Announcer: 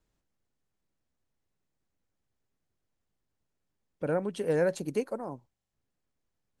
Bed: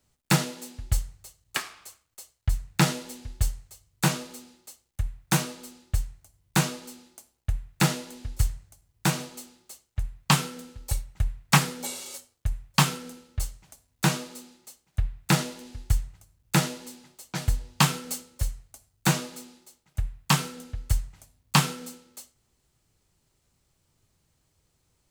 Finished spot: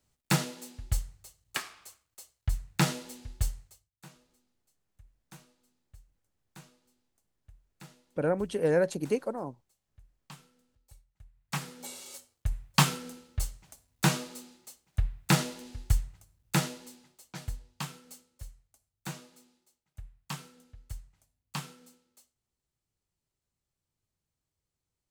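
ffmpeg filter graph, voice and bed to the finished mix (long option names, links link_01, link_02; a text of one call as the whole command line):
ffmpeg -i stem1.wav -i stem2.wav -filter_complex "[0:a]adelay=4150,volume=1.5dB[link_01];[1:a]volume=22dB,afade=type=out:start_time=3.61:duration=0.3:silence=0.0630957,afade=type=in:start_time=11.32:duration=1.3:silence=0.0473151,afade=type=out:start_time=15.93:duration=1.88:silence=0.177828[link_02];[link_01][link_02]amix=inputs=2:normalize=0" out.wav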